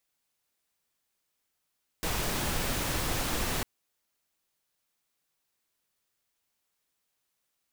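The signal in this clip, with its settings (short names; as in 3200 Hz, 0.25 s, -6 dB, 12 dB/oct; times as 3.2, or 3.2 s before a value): noise pink, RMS -30.5 dBFS 1.60 s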